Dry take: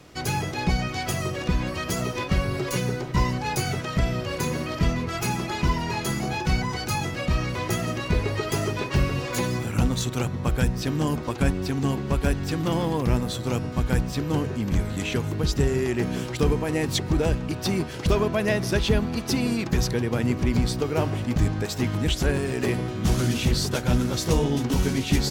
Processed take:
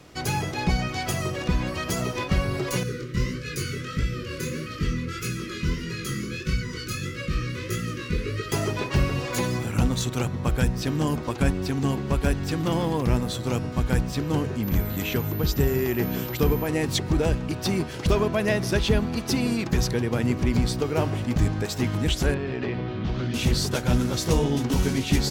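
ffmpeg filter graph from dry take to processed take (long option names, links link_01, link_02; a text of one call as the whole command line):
ffmpeg -i in.wav -filter_complex "[0:a]asettb=1/sr,asplit=3[link_01][link_02][link_03];[link_01]atrim=end=2.834[link_04];[link_02]atrim=start=2.83:end=8.52,asetpts=PTS-STARTPTS,afade=type=in:duration=0.004:curve=qsin,afade=type=out:start_time=5.686:duration=0.004:curve=qsin,asuperstop=centerf=790:order=8:qfactor=1.3,flanger=delay=17.5:depth=7.8:speed=1.6[link_05];[link_03]atrim=start=8.516[link_06];[link_04][link_05]acrossfade=duration=0.004:curve1=hsin:curve2=qsin[link_07];[link_07][link_06]acrossfade=duration=0.004:curve1=qsin:curve2=hsin,asettb=1/sr,asplit=3[link_08][link_09][link_10];[link_08]atrim=end=14.634[link_11];[link_09]atrim=start=14.63:end=16.67,asetpts=PTS-STARTPTS,afade=type=in:duration=0.004:curve=qsin,afade=type=out:start_time=2.036:duration=0.004:curve=qsin,highshelf=frequency=10000:gain=-6.5,aeval=exprs='val(0)+0.0141*sin(2*PI*14000*n/s)':channel_layout=same[link_12];[link_10]atrim=start=16.666[link_13];[link_11][link_12]acrossfade=duration=0.004:curve1=hsin:curve2=qsin[link_14];[link_14][link_13]acrossfade=duration=0.004:curve1=qsin:curve2=hsin,asettb=1/sr,asplit=3[link_15][link_16][link_17];[link_15]atrim=end=22.344[link_18];[link_16]atrim=start=22.34:end=23.34,asetpts=PTS-STARTPTS,afade=type=in:duration=0.004:curve=qsin,afade=type=out:start_time=0.996:duration=0.004:curve=qsin,acompressor=threshold=-25dB:ratio=2.5:attack=3.2:release=140:knee=1:detection=peak,lowpass=frequency=4100:width=0.5412,lowpass=frequency=4100:width=1.3066[link_19];[link_17]atrim=start=23.336[link_20];[link_18][link_19]acrossfade=duration=0.004:curve1=hsin:curve2=qsin[link_21];[link_21][link_20]acrossfade=duration=0.004:curve1=qsin:curve2=hsin" out.wav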